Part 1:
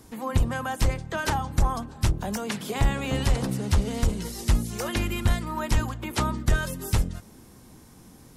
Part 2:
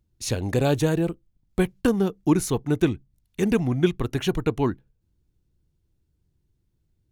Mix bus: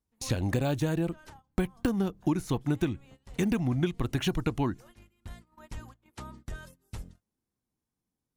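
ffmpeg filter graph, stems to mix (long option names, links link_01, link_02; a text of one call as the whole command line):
ffmpeg -i stem1.wav -i stem2.wav -filter_complex "[0:a]volume=-17.5dB[link_01];[1:a]deesser=0.7,equalizer=frequency=430:width=4.5:gain=-8,volume=2dB,asplit=2[link_02][link_03];[link_03]apad=whole_len=368969[link_04];[link_01][link_04]sidechaincompress=threshold=-23dB:ratio=8:attack=5.1:release=1500[link_05];[link_05][link_02]amix=inputs=2:normalize=0,agate=range=-20dB:threshold=-47dB:ratio=16:detection=peak,acompressor=threshold=-24dB:ratio=6" out.wav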